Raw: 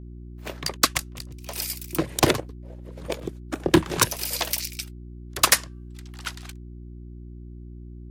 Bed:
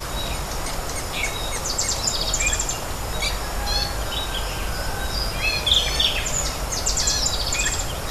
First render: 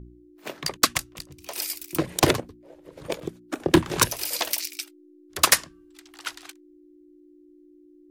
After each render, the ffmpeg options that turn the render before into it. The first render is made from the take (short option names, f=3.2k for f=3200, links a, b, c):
-af "bandreject=f=60:t=h:w=4,bandreject=f=120:t=h:w=4,bandreject=f=180:t=h:w=4,bandreject=f=240:t=h:w=4"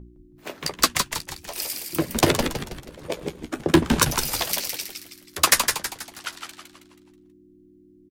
-filter_complex "[0:a]asplit=2[a][b];[b]adelay=12,volume=-10dB[c];[a][c]amix=inputs=2:normalize=0,asplit=2[d][e];[e]asplit=5[f][g][h][i][j];[f]adelay=161,afreqshift=-100,volume=-5.5dB[k];[g]adelay=322,afreqshift=-200,volume=-12.6dB[l];[h]adelay=483,afreqshift=-300,volume=-19.8dB[m];[i]adelay=644,afreqshift=-400,volume=-26.9dB[n];[j]adelay=805,afreqshift=-500,volume=-34dB[o];[k][l][m][n][o]amix=inputs=5:normalize=0[p];[d][p]amix=inputs=2:normalize=0"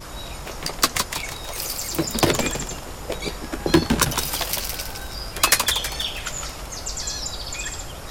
-filter_complex "[1:a]volume=-7.5dB[a];[0:a][a]amix=inputs=2:normalize=0"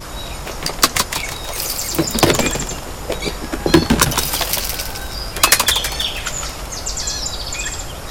-af "volume=6dB,alimiter=limit=-1dB:level=0:latency=1"